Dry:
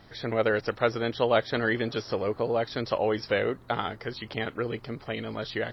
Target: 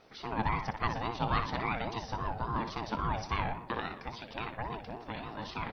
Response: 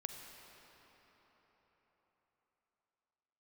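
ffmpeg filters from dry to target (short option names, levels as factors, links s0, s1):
-filter_complex "[0:a]asplit=2[s0][s1];[s1]adelay=60,lowpass=f=3400:p=1,volume=0.447,asplit=2[s2][s3];[s3]adelay=60,lowpass=f=3400:p=1,volume=0.53,asplit=2[s4][s5];[s5]adelay=60,lowpass=f=3400:p=1,volume=0.53,asplit=2[s6][s7];[s7]adelay=60,lowpass=f=3400:p=1,volume=0.53,asplit=2[s8][s9];[s9]adelay=60,lowpass=f=3400:p=1,volume=0.53,asplit=2[s10][s11];[s11]adelay=60,lowpass=f=3400:p=1,volume=0.53[s12];[s0][s2][s4][s6][s8][s10][s12]amix=inputs=7:normalize=0,aeval=exprs='val(0)*sin(2*PI*460*n/s+460*0.3/3.6*sin(2*PI*3.6*n/s))':c=same,volume=0.596"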